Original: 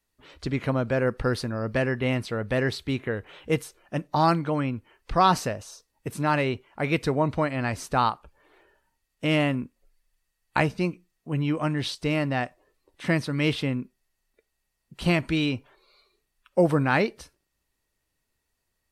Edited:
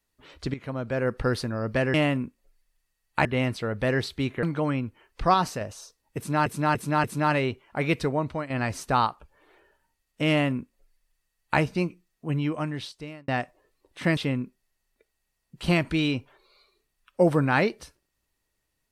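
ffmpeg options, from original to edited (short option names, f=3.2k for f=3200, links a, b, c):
-filter_complex "[0:a]asplit=13[a][b][c][d][e][f][g][h][i][j][k][l][m];[a]atrim=end=0.54,asetpts=PTS-STARTPTS,afade=t=out:st=0.536:d=0.004:c=hsin:silence=0.211349[n];[b]atrim=start=0.54:end=1.942,asetpts=PTS-STARTPTS,afade=t=in:d=0.67:silence=0.211349[o];[c]atrim=start=9.318:end=10.632[p];[d]atrim=start=1.938:end=3.122[q];[e]atrim=start=4.328:end=5.242[r];[f]atrim=start=5.238:end=5.512,asetpts=PTS-STARTPTS,volume=-4dB[s];[g]atrim=start=5.508:end=6.362[t];[h]atrim=start=6.068:end=6.362[u];[i]atrim=start=6.068:end=6.362[v];[j]atrim=start=6.068:end=7.53,asetpts=PTS-STARTPTS,afade=t=out:st=0.902:d=0.56:silence=0.354813[w];[k]atrim=start=7.53:end=12.31,asetpts=PTS-STARTPTS,afade=t=in:d=0.004:c=hsin:silence=0.354813,afade=t=out:st=3.81:d=0.97[x];[l]atrim=start=12.31:end=13.202,asetpts=PTS-STARTPTS,afade=t=in:d=0.004:c=hsin[y];[m]atrim=start=13.548[z];[n][o]concat=n=2:v=0:a=1[aa];[aa][p]acrossfade=d=0.004:c1=hsin:c2=hsin[ab];[ab][q]acrossfade=d=0.004:c1=hsin:c2=hsin[ac];[ac][r]acrossfade=d=0.004:c1=hsin:c2=hsin[ad];[ad][s]acrossfade=d=0.004:c1=hsin:c2=hsin[ae];[ae][t]acrossfade=d=0.004:c1=hsin:c2=hsin[af];[af][u]acrossfade=d=0.004:c1=hsin:c2=hsin[ag];[ag][v]acrossfade=d=0.004:c1=hsin:c2=hsin[ah];[w][x][y]concat=n=3:v=0:a=1[ai];[ah][ai]acrossfade=d=0.004:c1=hsin:c2=hsin[aj];[aj][z]acrossfade=d=0.004:c1=hsin:c2=hsin"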